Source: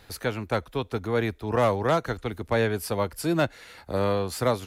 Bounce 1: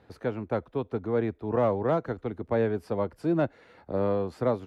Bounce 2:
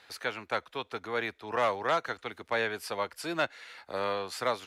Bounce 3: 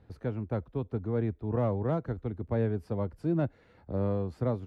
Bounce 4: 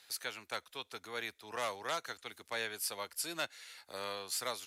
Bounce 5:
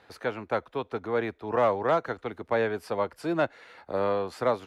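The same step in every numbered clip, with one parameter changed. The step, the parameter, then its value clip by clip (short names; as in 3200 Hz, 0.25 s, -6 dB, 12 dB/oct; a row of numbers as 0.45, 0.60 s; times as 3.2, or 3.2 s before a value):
band-pass, frequency: 310, 2200, 120, 7500, 820 Hz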